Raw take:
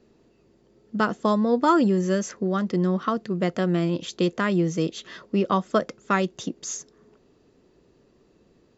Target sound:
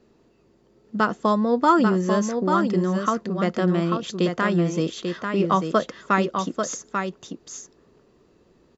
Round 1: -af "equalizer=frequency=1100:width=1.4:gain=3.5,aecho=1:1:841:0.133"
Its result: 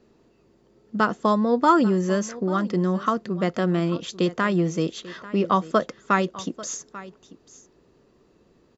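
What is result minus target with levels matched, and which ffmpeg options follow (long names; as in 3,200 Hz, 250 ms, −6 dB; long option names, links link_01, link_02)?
echo-to-direct −12 dB
-af "equalizer=frequency=1100:width=1.4:gain=3.5,aecho=1:1:841:0.531"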